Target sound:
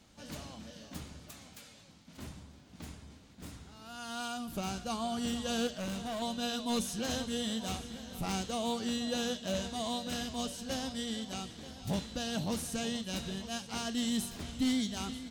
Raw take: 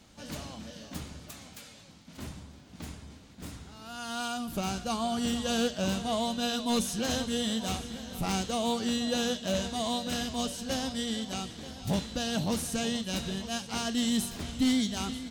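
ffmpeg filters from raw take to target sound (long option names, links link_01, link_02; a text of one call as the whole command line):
ffmpeg -i in.wav -filter_complex "[0:a]asettb=1/sr,asplit=3[link_01][link_02][link_03];[link_01]atrim=end=5.674[link_04];[link_02]atrim=start=5.67:end=6.22,asetpts=PTS-STARTPTS,afade=type=in:duration=0.004:curve=qsin,afade=type=out:start_time=0.546:duration=0.004:curve=qsin,volume=30dB,asoftclip=hard,volume=-30dB[link_05];[link_03]atrim=start=6.216[link_06];[link_04][link_05]acrossfade=duration=0.004:curve1=hsin:curve2=qsin[link_07];[link_07][link_06]acrossfade=duration=0.004:curve1=qsin:curve2=hsin,volume=-4.5dB" out.wav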